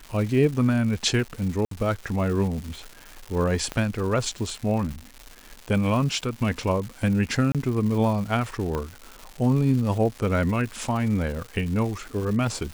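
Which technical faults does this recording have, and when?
surface crackle 320 per second −32 dBFS
0:01.65–0:01.71: drop-out 63 ms
0:03.72: click −15 dBFS
0:07.52–0:07.55: drop-out 27 ms
0:08.75: click −16 dBFS

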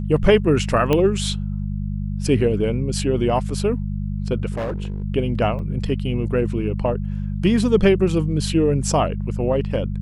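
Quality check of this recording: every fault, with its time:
mains hum 50 Hz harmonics 4 −25 dBFS
0:00.93: click −7 dBFS
0:04.52–0:05.04: clipping −21.5 dBFS
0:05.59: drop-out 2.4 ms

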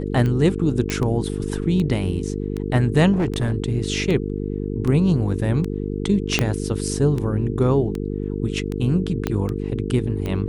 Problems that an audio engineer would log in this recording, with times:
mains buzz 50 Hz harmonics 9 −26 dBFS
scratch tick 78 rpm −15 dBFS
0:00.90: click −10 dBFS
0:03.12–0:03.53: clipping −16.5 dBFS
0:06.39: click −3 dBFS
0:09.27: click −8 dBFS

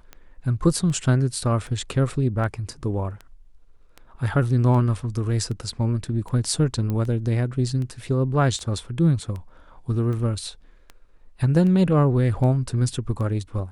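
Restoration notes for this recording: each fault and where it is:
scratch tick 78 rpm −23 dBFS
0:06.90: click −16 dBFS

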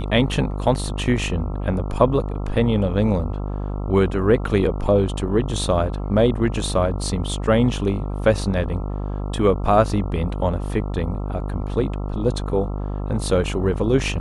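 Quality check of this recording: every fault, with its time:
mains buzz 50 Hz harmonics 27 −26 dBFS

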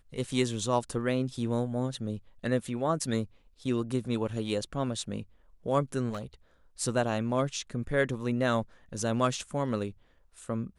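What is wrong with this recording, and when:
0:06.09–0:06.25: clipping −31 dBFS

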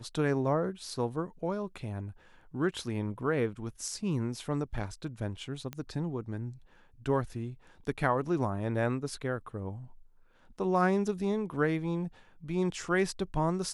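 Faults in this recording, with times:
0:05.73: click −23 dBFS

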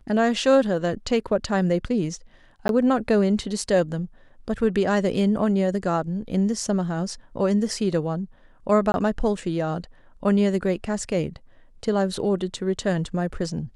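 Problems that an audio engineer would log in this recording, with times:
0:02.68–0:02.69: drop-out 12 ms
0:08.92–0:08.94: drop-out 21 ms

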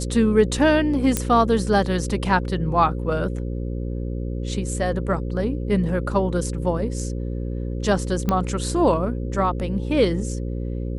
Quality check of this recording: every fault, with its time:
mains buzz 60 Hz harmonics 9 −27 dBFS
0:01.17: click −5 dBFS
0:08.29: click −9 dBFS

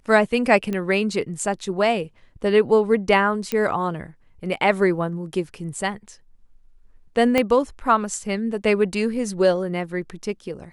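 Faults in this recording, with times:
0:00.73: click −15 dBFS
0:03.52: click −10 dBFS
0:07.38: click −6 dBFS

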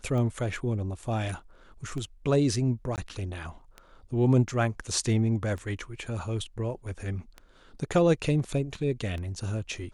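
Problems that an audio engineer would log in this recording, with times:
scratch tick 33 1/3 rpm −25 dBFS
0:02.96–0:02.98: drop-out 18 ms

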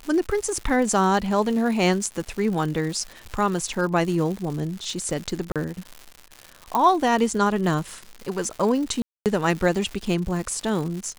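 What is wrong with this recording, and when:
surface crackle 210 per second −30 dBFS
0:05.52–0:05.56: drop-out 37 ms
0:06.75: click −9 dBFS
0:09.02–0:09.26: drop-out 238 ms

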